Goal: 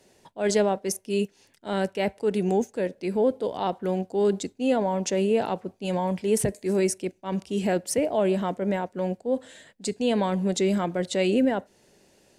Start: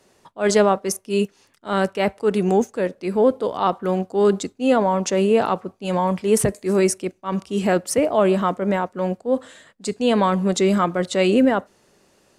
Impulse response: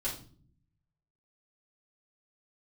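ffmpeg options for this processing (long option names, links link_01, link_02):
-filter_complex "[0:a]equalizer=frequency=1200:width=3.6:gain=-12.5,asplit=2[link_01][link_02];[link_02]acompressor=threshold=-28dB:ratio=6,volume=1.5dB[link_03];[link_01][link_03]amix=inputs=2:normalize=0,volume=-7.5dB"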